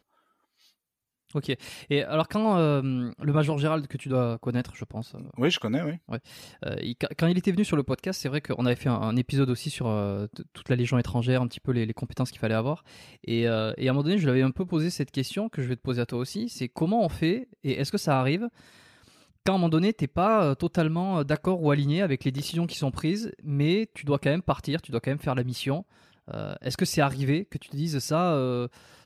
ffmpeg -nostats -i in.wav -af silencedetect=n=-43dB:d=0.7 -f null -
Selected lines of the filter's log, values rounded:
silence_start: 0.00
silence_end: 1.29 | silence_duration: 1.29